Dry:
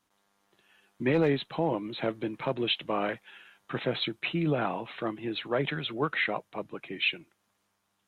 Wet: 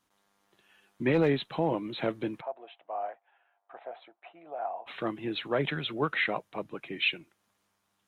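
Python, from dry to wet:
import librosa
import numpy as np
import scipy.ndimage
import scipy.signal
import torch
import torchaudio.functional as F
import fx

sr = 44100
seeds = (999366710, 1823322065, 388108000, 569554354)

y = fx.ladder_bandpass(x, sr, hz=760.0, resonance_pct=75, at=(2.4, 4.86), fade=0.02)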